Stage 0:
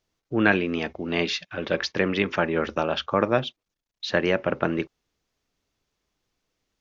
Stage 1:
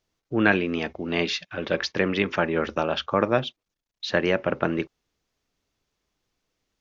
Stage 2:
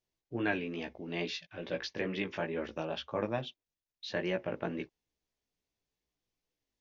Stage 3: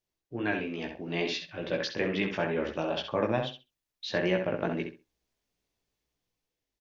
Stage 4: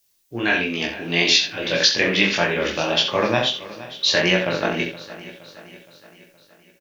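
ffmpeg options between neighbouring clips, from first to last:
-af anull
-af "equalizer=f=1300:t=o:w=0.38:g=-8,flanger=delay=16:depth=2.8:speed=2.3,volume=0.398"
-filter_complex "[0:a]asplit=2[s0][s1];[s1]adelay=66,lowpass=f=4000:p=1,volume=0.501,asplit=2[s2][s3];[s3]adelay=66,lowpass=f=4000:p=1,volume=0.2,asplit=2[s4][s5];[s5]adelay=66,lowpass=f=4000:p=1,volume=0.2[s6];[s2][s4][s6]amix=inputs=3:normalize=0[s7];[s0][s7]amix=inputs=2:normalize=0,dynaudnorm=f=130:g=13:m=1.78"
-af "crystalizer=i=8:c=0,flanger=delay=22.5:depth=3.8:speed=1.6,aecho=1:1:469|938|1407|1876|2345:0.141|0.0749|0.0397|0.021|0.0111,volume=2.82"

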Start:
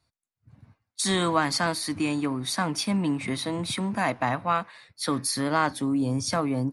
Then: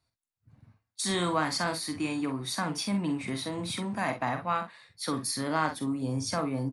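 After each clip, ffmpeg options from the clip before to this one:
-af "aecho=1:1:45|63:0.422|0.188,volume=0.562"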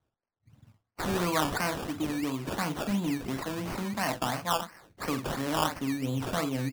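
-af "acrusher=samples=17:mix=1:aa=0.000001:lfo=1:lforange=10.2:lforate=2.9"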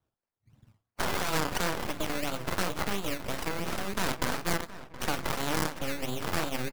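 -filter_complex "[0:a]acrossover=split=860|5800[s0][s1][s2];[s0]acompressor=threshold=0.02:ratio=4[s3];[s1]acompressor=threshold=0.02:ratio=4[s4];[s2]acompressor=threshold=0.00794:ratio=4[s5];[s3][s4][s5]amix=inputs=3:normalize=0,aeval=exprs='0.15*(cos(1*acos(clip(val(0)/0.15,-1,1)))-cos(1*PI/2))+0.0335*(cos(3*acos(clip(val(0)/0.15,-1,1)))-cos(3*PI/2))+0.0119*(cos(5*acos(clip(val(0)/0.15,-1,1)))-cos(5*PI/2))+0.0668*(cos(6*acos(clip(val(0)/0.15,-1,1)))-cos(6*PI/2))':c=same,asplit=2[s6][s7];[s7]adelay=721,lowpass=f=2600:p=1,volume=0.178,asplit=2[s8][s9];[s9]adelay=721,lowpass=f=2600:p=1,volume=0.48,asplit=2[s10][s11];[s11]adelay=721,lowpass=f=2600:p=1,volume=0.48,asplit=2[s12][s13];[s13]adelay=721,lowpass=f=2600:p=1,volume=0.48[s14];[s6][s8][s10][s12][s14]amix=inputs=5:normalize=0"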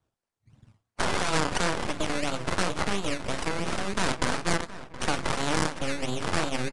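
-af "aresample=22050,aresample=44100,volume=1.5"

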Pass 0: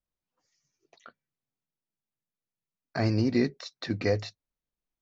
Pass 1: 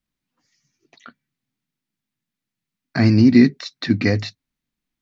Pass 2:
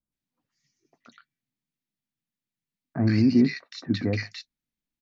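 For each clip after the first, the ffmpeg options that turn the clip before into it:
-af "equalizer=f=125:t=o:w=1:g=5,equalizer=f=250:t=o:w=1:g=11,equalizer=f=500:t=o:w=1:g=-6,equalizer=f=2000:t=o:w=1:g=6,equalizer=f=4000:t=o:w=1:g=4,volume=1.78"
-filter_complex "[0:a]acrossover=split=1300[s0][s1];[s1]adelay=120[s2];[s0][s2]amix=inputs=2:normalize=0,volume=0.422"

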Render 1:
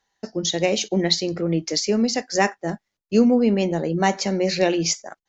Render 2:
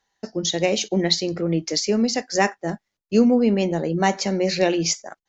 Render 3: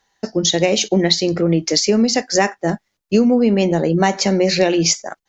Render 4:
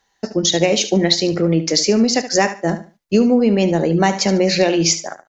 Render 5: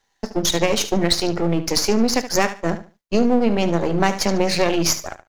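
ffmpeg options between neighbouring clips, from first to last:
-af anull
-af "acompressor=threshold=0.112:ratio=4,volume=2.51"
-af "aecho=1:1:73|146|219:0.237|0.0545|0.0125"
-af "aeval=exprs='if(lt(val(0),0),0.251*val(0),val(0))':c=same"

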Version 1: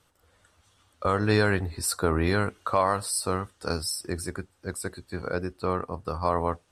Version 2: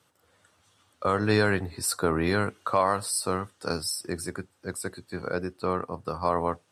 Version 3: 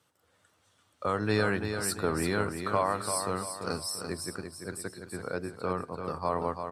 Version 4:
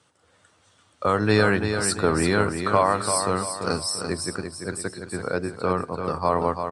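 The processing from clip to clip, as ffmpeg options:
-af "highpass=f=100:w=0.5412,highpass=f=100:w=1.3066"
-af "aecho=1:1:340|680|1020|1360|1700:0.447|0.179|0.0715|0.0286|0.0114,volume=0.596"
-af "aresample=22050,aresample=44100,volume=2.51"

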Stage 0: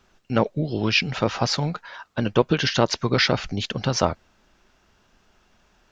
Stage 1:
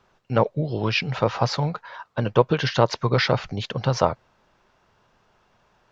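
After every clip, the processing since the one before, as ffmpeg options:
-af "equalizer=f=125:t=o:w=1:g=12,equalizer=f=500:t=o:w=1:g=9,equalizer=f=1000:t=o:w=1:g=10,equalizer=f=2000:t=o:w=1:g=4,equalizer=f=4000:t=o:w=1:g=4,volume=0.355"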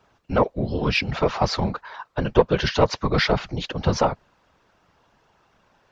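-af "acontrast=23,afftfilt=real='hypot(re,im)*cos(2*PI*random(0))':imag='hypot(re,im)*sin(2*PI*random(1))':win_size=512:overlap=0.75,volume=1.26"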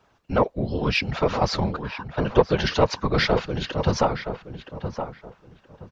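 -filter_complex "[0:a]asplit=2[s0][s1];[s1]adelay=971,lowpass=f=1900:p=1,volume=0.376,asplit=2[s2][s3];[s3]adelay=971,lowpass=f=1900:p=1,volume=0.25,asplit=2[s4][s5];[s5]adelay=971,lowpass=f=1900:p=1,volume=0.25[s6];[s0][s2][s4][s6]amix=inputs=4:normalize=0,volume=0.891"

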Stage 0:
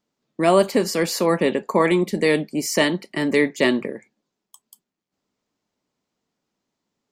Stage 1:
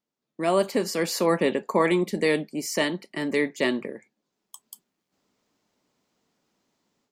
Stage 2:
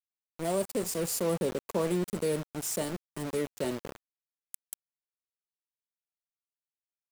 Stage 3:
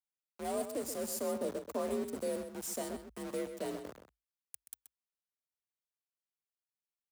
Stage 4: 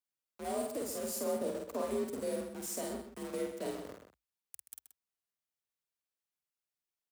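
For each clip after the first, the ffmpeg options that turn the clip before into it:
-af "lowshelf=f=130:g=-4.5,dynaudnorm=f=320:g=3:m=5.62,volume=0.355"
-filter_complex "[0:a]firequalizer=gain_entry='entry(110,0);entry(250,-14);entry(470,-9);entry(1700,-26);entry(8100,-1)':delay=0.05:min_phase=1,asplit=2[s0][s1];[s1]alimiter=level_in=1.68:limit=0.0631:level=0:latency=1:release=12,volume=0.596,volume=0.794[s2];[s0][s2]amix=inputs=2:normalize=0,aeval=exprs='val(0)*gte(abs(val(0)),0.0188)':c=same"
-filter_complex "[0:a]adynamicequalizer=threshold=0.00251:dfrequency=2600:dqfactor=1.1:tfrequency=2600:tqfactor=1.1:attack=5:release=100:ratio=0.375:range=2.5:mode=cutabove:tftype=bell,afreqshift=52,asplit=2[s0][s1];[s1]adelay=128.3,volume=0.355,highshelf=f=4000:g=-2.89[s2];[s0][s2]amix=inputs=2:normalize=0,volume=0.473"
-filter_complex "[0:a]asplit=2[s0][s1];[s1]adelay=49,volume=0.708[s2];[s0][s2]amix=inputs=2:normalize=0,volume=0.841"

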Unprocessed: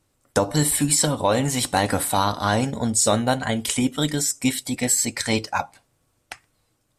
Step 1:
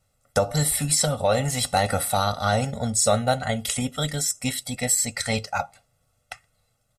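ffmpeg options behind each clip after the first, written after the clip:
-af "aecho=1:1:1.5:1,volume=0.596"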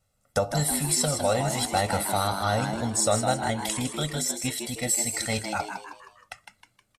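-filter_complex "[0:a]asplit=6[s0][s1][s2][s3][s4][s5];[s1]adelay=157,afreqshift=100,volume=0.447[s6];[s2]adelay=314,afreqshift=200,volume=0.207[s7];[s3]adelay=471,afreqshift=300,volume=0.0944[s8];[s4]adelay=628,afreqshift=400,volume=0.0437[s9];[s5]adelay=785,afreqshift=500,volume=0.02[s10];[s0][s6][s7][s8][s9][s10]amix=inputs=6:normalize=0,volume=0.668"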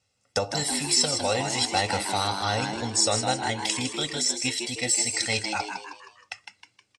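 -af "highpass=120,equalizer=f=150:t=q:w=4:g=-10,equalizer=f=220:t=q:w=4:g=-7,equalizer=f=630:t=q:w=4:g=-10,equalizer=f=1300:t=q:w=4:g=-7,equalizer=f=2600:t=q:w=4:g=5,equalizer=f=5200:t=q:w=4:g=7,lowpass=f=8100:w=0.5412,lowpass=f=8100:w=1.3066,volume=1.41"

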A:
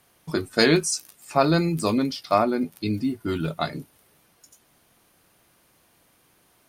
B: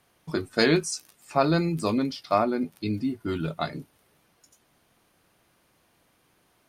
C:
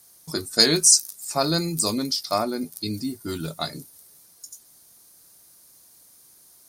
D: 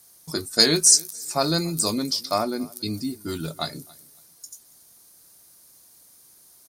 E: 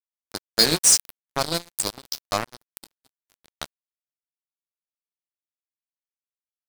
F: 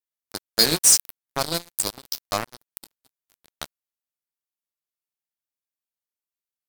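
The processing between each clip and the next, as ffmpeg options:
-af "highshelf=f=7300:g=-7.5,volume=0.75"
-af "aexciter=amount=11.7:drive=1.5:freq=4200,volume=0.841"
-af "aecho=1:1:279|558:0.0631|0.0145"
-af "acrusher=bits=2:mix=0:aa=0.5,volume=0.891"
-af "equalizer=f=15000:w=0.64:g=6.5,volume=0.891"

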